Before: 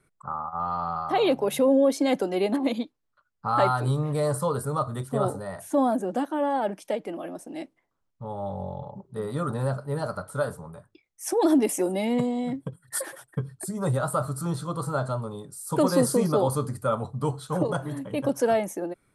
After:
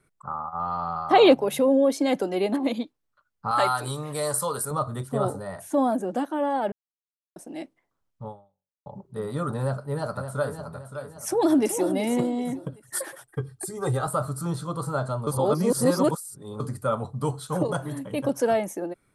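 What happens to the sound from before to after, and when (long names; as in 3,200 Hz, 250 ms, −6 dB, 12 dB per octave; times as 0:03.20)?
0:01.11–0:01.34: gain on a spectral selection 200–8,800 Hz +7 dB
0:03.51–0:04.71: spectral tilt +3 dB per octave
0:06.72–0:07.36: silence
0:08.28–0:08.86: fade out exponential
0:09.58–0:10.65: delay throw 570 ms, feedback 40%, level −9 dB
0:11.27–0:11.89: delay throw 380 ms, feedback 30%, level −9 dB
0:13.27–0:14.07: comb filter 2.5 ms, depth 70%
0:15.27–0:16.60: reverse
0:17.16–0:18.24: high-shelf EQ 5,300 Hz +5.5 dB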